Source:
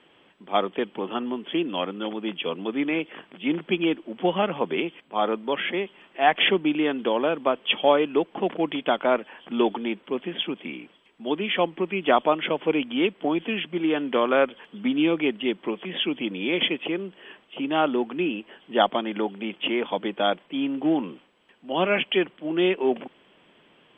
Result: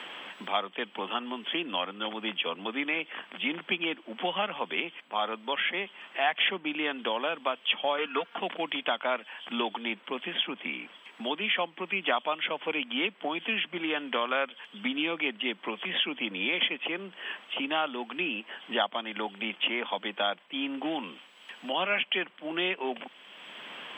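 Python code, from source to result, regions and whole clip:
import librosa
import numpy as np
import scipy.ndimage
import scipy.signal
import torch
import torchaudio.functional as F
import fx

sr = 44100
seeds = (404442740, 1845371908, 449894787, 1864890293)

y = fx.chain(x, sr, fx.peak_eq(hz=1400.0, db=12.0, octaves=0.75),
    fx.comb(ms=4.3, depth=0.75), at=(7.98, 8.38))
y = scipy.signal.sosfilt(scipy.signal.butter(4, 220.0, 'highpass', fs=sr, output='sos'), y)
y = fx.peak_eq(y, sr, hz=350.0, db=-14.0, octaves=1.6)
y = fx.band_squash(y, sr, depth_pct=70)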